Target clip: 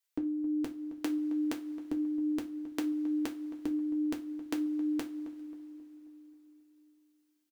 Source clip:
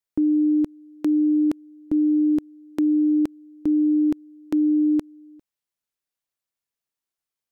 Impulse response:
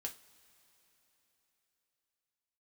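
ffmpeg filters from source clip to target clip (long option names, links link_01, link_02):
-filter_complex "[0:a]tiltshelf=frequency=700:gain=-8,asplit=2[link_01][link_02];[link_02]adelay=268,lowpass=frequency=1100:poles=1,volume=-13dB,asplit=2[link_03][link_04];[link_04]adelay=268,lowpass=frequency=1100:poles=1,volume=0.54,asplit=2[link_05][link_06];[link_06]adelay=268,lowpass=frequency=1100:poles=1,volume=0.54,asplit=2[link_07][link_08];[link_08]adelay=268,lowpass=frequency=1100:poles=1,volume=0.54,asplit=2[link_09][link_10];[link_10]adelay=268,lowpass=frequency=1100:poles=1,volume=0.54,asplit=2[link_11][link_12];[link_12]adelay=268,lowpass=frequency=1100:poles=1,volume=0.54[link_13];[link_01][link_03][link_05][link_07][link_09][link_11][link_13]amix=inputs=7:normalize=0[link_14];[1:a]atrim=start_sample=2205[link_15];[link_14][link_15]afir=irnorm=-1:irlink=0"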